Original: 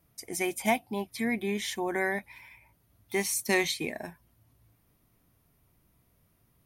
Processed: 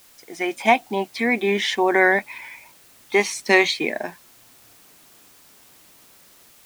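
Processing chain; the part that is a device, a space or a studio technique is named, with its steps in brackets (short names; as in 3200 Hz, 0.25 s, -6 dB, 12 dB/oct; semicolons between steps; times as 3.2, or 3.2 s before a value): dictaphone (BPF 300–4100 Hz; AGC gain up to 14 dB; wow and flutter; white noise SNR 28 dB)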